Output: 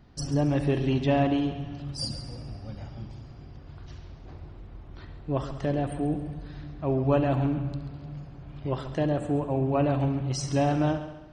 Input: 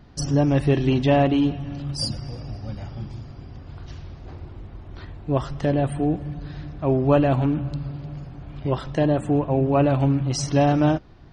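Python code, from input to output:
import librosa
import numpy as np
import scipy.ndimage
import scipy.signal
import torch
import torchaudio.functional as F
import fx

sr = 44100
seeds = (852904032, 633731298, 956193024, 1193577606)

y = fx.wow_flutter(x, sr, seeds[0], rate_hz=2.1, depth_cents=16.0)
y = fx.echo_heads(y, sr, ms=68, heads='first and second', feedback_pct=49, wet_db=-14.0)
y = y * 10.0 ** (-6.0 / 20.0)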